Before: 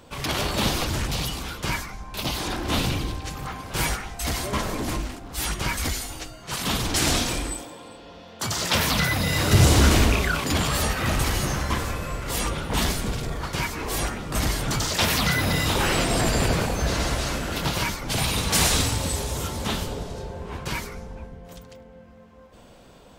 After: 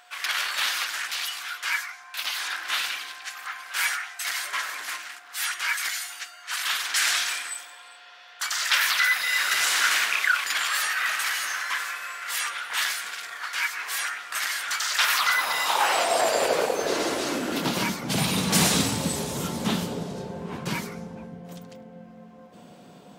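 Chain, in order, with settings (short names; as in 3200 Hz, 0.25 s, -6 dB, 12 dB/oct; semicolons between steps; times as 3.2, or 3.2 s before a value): high-pass sweep 1600 Hz -> 180 Hz, 14.82–18.09; whine 720 Hz -55 dBFS; gain -1 dB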